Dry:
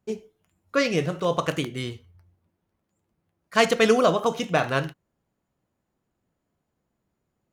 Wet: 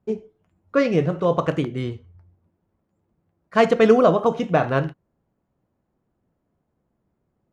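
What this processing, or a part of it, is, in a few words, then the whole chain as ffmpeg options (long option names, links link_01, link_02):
through cloth: -af "lowpass=9100,highshelf=frequency=2200:gain=-17,volume=5.5dB"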